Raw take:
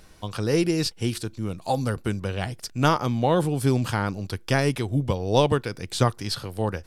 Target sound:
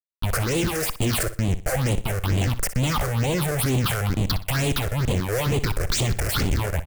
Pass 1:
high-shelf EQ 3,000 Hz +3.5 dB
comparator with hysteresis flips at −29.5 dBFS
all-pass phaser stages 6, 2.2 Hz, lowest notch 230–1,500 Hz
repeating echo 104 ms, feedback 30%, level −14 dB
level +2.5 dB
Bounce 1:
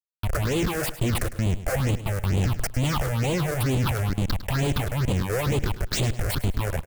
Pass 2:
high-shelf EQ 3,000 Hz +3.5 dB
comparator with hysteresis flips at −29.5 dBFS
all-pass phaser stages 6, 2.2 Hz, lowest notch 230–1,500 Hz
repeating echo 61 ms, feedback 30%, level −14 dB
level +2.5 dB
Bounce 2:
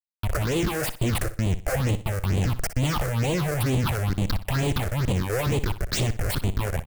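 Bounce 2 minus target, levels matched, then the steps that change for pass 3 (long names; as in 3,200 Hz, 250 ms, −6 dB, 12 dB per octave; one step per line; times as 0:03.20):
8,000 Hz band −3.5 dB
change: high-shelf EQ 3,000 Hz +14.5 dB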